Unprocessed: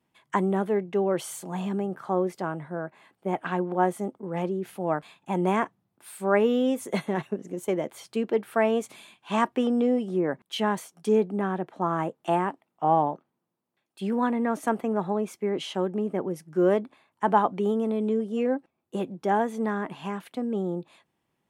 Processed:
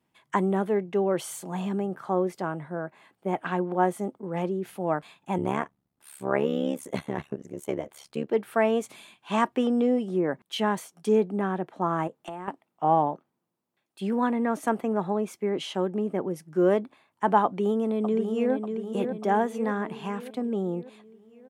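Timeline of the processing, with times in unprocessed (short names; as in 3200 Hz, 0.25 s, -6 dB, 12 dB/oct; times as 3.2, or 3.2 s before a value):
5.38–8.31 AM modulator 71 Hz, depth 85%
12.07–12.48 compressor 8:1, threshold -33 dBFS
17.45–18.53 echo throw 0.59 s, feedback 55%, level -6.5 dB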